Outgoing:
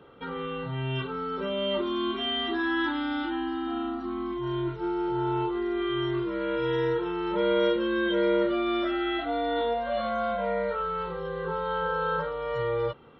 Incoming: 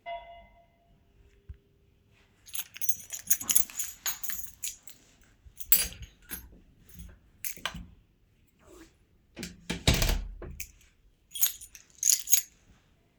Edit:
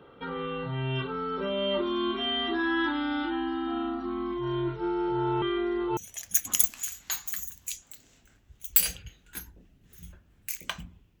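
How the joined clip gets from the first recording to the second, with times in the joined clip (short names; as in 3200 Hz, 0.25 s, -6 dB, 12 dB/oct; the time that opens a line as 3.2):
outgoing
5.42–5.97 reverse
5.97 switch to incoming from 2.93 s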